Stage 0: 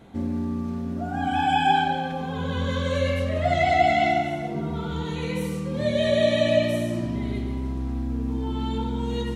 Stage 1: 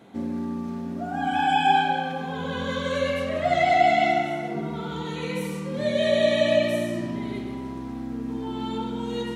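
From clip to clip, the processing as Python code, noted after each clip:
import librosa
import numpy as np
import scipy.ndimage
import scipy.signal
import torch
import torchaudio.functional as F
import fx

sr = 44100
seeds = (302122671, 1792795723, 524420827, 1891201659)

y = scipy.signal.sosfilt(scipy.signal.butter(2, 170.0, 'highpass', fs=sr, output='sos'), x)
y = fx.echo_banded(y, sr, ms=64, feedback_pct=82, hz=1400.0, wet_db=-8.5)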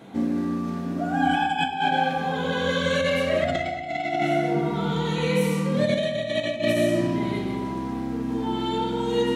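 y = fx.dynamic_eq(x, sr, hz=1100.0, q=3.9, threshold_db=-42.0, ratio=4.0, max_db=-5)
y = fx.over_compress(y, sr, threshold_db=-25.0, ratio=-0.5)
y = fx.room_shoebox(y, sr, seeds[0], volume_m3=300.0, walls='mixed', distance_m=0.62)
y = F.gain(torch.from_numpy(y), 2.5).numpy()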